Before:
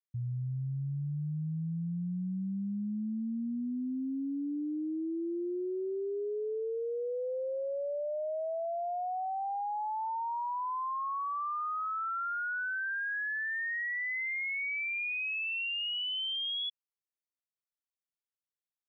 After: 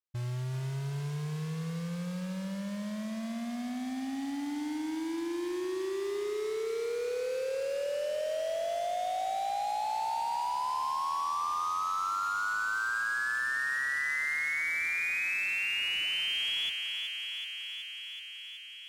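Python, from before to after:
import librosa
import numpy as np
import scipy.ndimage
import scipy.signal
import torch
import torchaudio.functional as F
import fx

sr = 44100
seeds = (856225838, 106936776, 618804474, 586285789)

p1 = fx.peak_eq(x, sr, hz=210.0, db=-3.5, octaves=1.3)
p2 = fx.quant_dither(p1, sr, seeds[0], bits=6, dither='none')
p3 = p1 + F.gain(torch.from_numpy(p2), -6.0).numpy()
p4 = fx.mod_noise(p3, sr, seeds[1], snr_db=15)
p5 = fx.air_absorb(p4, sr, metres=56.0)
p6 = fx.echo_thinned(p5, sr, ms=375, feedback_pct=79, hz=580.0, wet_db=-5.5)
y = F.gain(torch.from_numpy(p6), -2.5).numpy()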